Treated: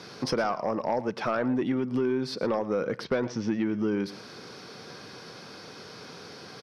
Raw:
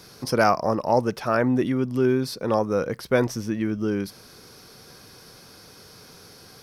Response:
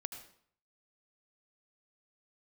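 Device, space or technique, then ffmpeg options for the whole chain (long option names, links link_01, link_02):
AM radio: -filter_complex "[0:a]highpass=150,lowpass=4300,acompressor=threshold=-29dB:ratio=5,asoftclip=type=tanh:threshold=-22.5dB,asplit=3[link_01][link_02][link_03];[link_01]afade=type=out:start_time=3.03:duration=0.02[link_04];[link_02]lowpass=frequency=6500:width=0.5412,lowpass=frequency=6500:width=1.3066,afade=type=in:start_time=3.03:duration=0.02,afade=type=out:start_time=3.64:duration=0.02[link_05];[link_03]afade=type=in:start_time=3.64:duration=0.02[link_06];[link_04][link_05][link_06]amix=inputs=3:normalize=0,aecho=1:1:113:0.158,volume=5.5dB"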